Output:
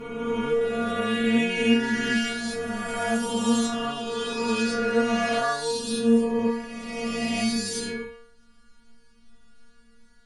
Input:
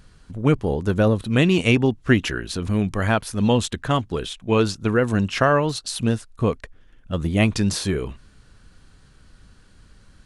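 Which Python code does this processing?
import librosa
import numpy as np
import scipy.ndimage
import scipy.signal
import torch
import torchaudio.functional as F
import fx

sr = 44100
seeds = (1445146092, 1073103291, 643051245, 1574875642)

y = fx.spec_swells(x, sr, rise_s=2.78)
y = fx.stiff_resonator(y, sr, f0_hz=230.0, decay_s=0.64, stiffness=0.002)
y = y * 10.0 ** (7.5 / 20.0)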